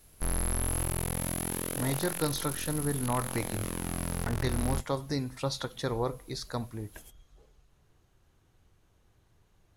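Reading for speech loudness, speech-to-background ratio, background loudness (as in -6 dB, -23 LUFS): -34.5 LUFS, -0.5 dB, -34.0 LUFS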